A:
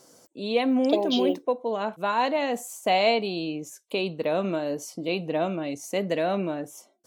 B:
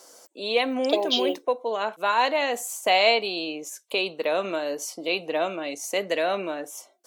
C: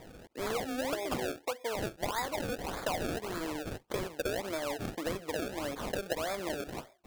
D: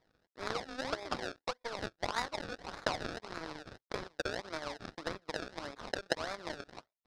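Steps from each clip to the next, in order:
high-pass filter 510 Hz 12 dB per octave; dynamic equaliser 750 Hz, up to −4 dB, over −38 dBFS, Q 1.1; level +6 dB
downward compressor 6 to 1, threshold −32 dBFS, peak gain reduction 16 dB; sample-and-hold swept by an LFO 30×, swing 100% 1.7 Hz
Chebyshev low-pass with heavy ripple 5,300 Hz, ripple 6 dB; power curve on the samples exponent 2; level +11.5 dB

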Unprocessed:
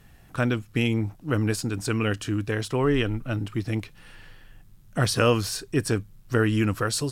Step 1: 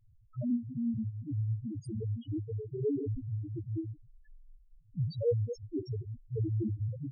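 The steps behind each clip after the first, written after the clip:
delay that plays each chunk backwards 123 ms, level −5 dB
flanger 0.36 Hz, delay 8.9 ms, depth 8.8 ms, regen +84%
spectral peaks only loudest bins 1
level +3 dB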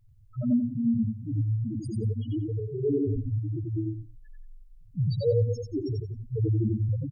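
dynamic equaliser 1,000 Hz, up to −5 dB, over −52 dBFS, Q 1.1
on a send: repeating echo 90 ms, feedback 16%, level −3 dB
on the sum: level +5 dB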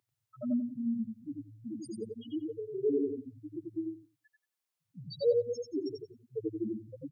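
Bessel high-pass filter 350 Hz, order 4

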